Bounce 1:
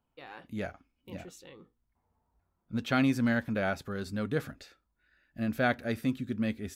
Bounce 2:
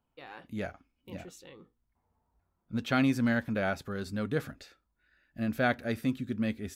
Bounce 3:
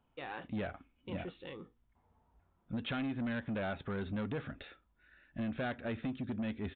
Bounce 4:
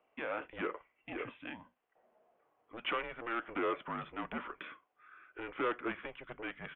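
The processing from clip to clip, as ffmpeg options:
-af anull
-af "acompressor=threshold=0.0158:ratio=4,aresample=8000,asoftclip=type=tanh:threshold=0.0141,aresample=44100,volume=1.78"
-af "highpass=f=580:t=q:w=0.5412,highpass=f=580:t=q:w=1.307,lowpass=f=3200:t=q:w=0.5176,lowpass=f=3200:t=q:w=0.7071,lowpass=f=3200:t=q:w=1.932,afreqshift=-240,volume=2.11"

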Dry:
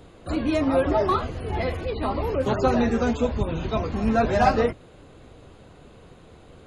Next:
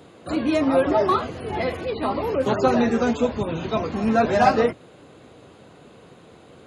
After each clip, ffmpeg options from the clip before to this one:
-af "highpass=140,volume=1.33"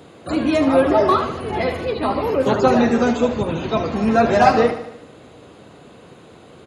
-af "aecho=1:1:75|150|225|300|375|450:0.282|0.155|0.0853|0.0469|0.0258|0.0142,volume=1.5"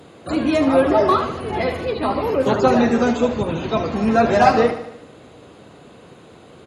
-ar 48000 -c:a libmp3lame -b:a 192k

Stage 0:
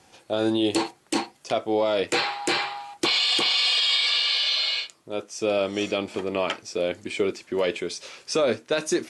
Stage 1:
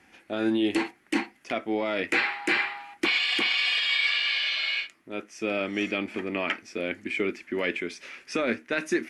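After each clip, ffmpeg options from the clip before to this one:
-af "equalizer=f=125:t=o:w=1:g=-11,equalizer=f=250:t=o:w=1:g=6,equalizer=f=500:t=o:w=1:g=-8,equalizer=f=1000:t=o:w=1:g=-6,equalizer=f=2000:t=o:w=1:g=10,equalizer=f=4000:t=o:w=1:g=-9,equalizer=f=8000:t=o:w=1:g=-11"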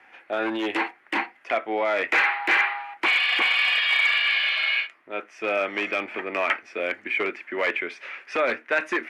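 -filter_complex "[0:a]aeval=exprs='0.112*(abs(mod(val(0)/0.112+3,4)-2)-1)':c=same,acrossover=split=490 2800:gain=0.1 1 0.1[s0][s1][s2];[s0][s1][s2]amix=inputs=3:normalize=0,volume=2.66"

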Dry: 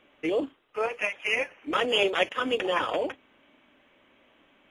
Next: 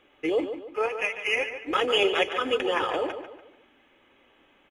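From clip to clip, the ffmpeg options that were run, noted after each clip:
-filter_complex "[0:a]aecho=1:1:2.4:0.36,asplit=2[s0][s1];[s1]adelay=145,lowpass=f=3900:p=1,volume=0.355,asplit=2[s2][s3];[s3]adelay=145,lowpass=f=3900:p=1,volume=0.4,asplit=2[s4][s5];[s5]adelay=145,lowpass=f=3900:p=1,volume=0.4,asplit=2[s6][s7];[s7]adelay=145,lowpass=f=3900:p=1,volume=0.4[s8];[s2][s4][s6][s8]amix=inputs=4:normalize=0[s9];[s0][s9]amix=inputs=2:normalize=0"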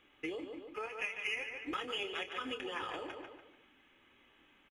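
-filter_complex "[0:a]asplit=2[s0][s1];[s1]adelay=27,volume=0.282[s2];[s0][s2]amix=inputs=2:normalize=0,acompressor=threshold=0.0316:ratio=6,equalizer=f=560:t=o:w=1.3:g=-8.5,volume=0.668"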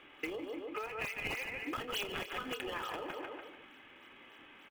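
-filter_complex "[0:a]highpass=f=300:p=1,acrossover=split=3900[s0][s1];[s0]acompressor=threshold=0.00355:ratio=6[s2];[s1]acrusher=samples=21:mix=1:aa=0.000001:lfo=1:lforange=33.6:lforate=3.4[s3];[s2][s3]amix=inputs=2:normalize=0,volume=3.55"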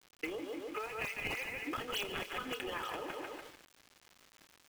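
-af "aeval=exprs='val(0)*gte(abs(val(0)),0.00335)':c=same"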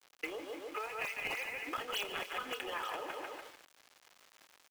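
-filter_complex "[0:a]lowshelf=f=340:g=-11.5,acrossover=split=410[s0][s1];[s0]acrusher=bits=2:mode=log:mix=0:aa=0.000001[s2];[s1]equalizer=f=580:w=0.6:g=4.5[s3];[s2][s3]amix=inputs=2:normalize=0"

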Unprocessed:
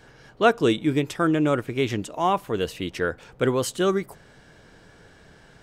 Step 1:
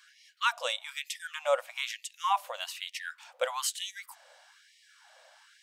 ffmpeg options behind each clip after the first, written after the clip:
-af "equalizer=f=1600:t=o:w=0.93:g=-6,afftfilt=real='re*gte(b*sr/1024,480*pow(1800/480,0.5+0.5*sin(2*PI*1.1*pts/sr)))':imag='im*gte(b*sr/1024,480*pow(1800/480,0.5+0.5*sin(2*PI*1.1*pts/sr)))':win_size=1024:overlap=0.75"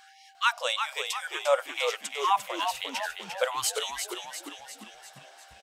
-filter_complex "[0:a]aeval=exprs='val(0)+0.00112*sin(2*PI*780*n/s)':c=same,asplit=2[s0][s1];[s1]asplit=7[s2][s3][s4][s5][s6][s7][s8];[s2]adelay=349,afreqshift=-74,volume=0.473[s9];[s3]adelay=698,afreqshift=-148,volume=0.26[s10];[s4]adelay=1047,afreqshift=-222,volume=0.143[s11];[s5]adelay=1396,afreqshift=-296,volume=0.0785[s12];[s6]adelay=1745,afreqshift=-370,volume=0.0432[s13];[s7]adelay=2094,afreqshift=-444,volume=0.0237[s14];[s8]adelay=2443,afreqshift=-518,volume=0.013[s15];[s9][s10][s11][s12][s13][s14][s15]amix=inputs=7:normalize=0[s16];[s0][s16]amix=inputs=2:normalize=0,volume=1.41"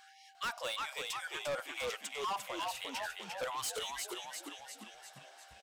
-af "asoftclip=type=tanh:threshold=0.0376,volume=0.596"

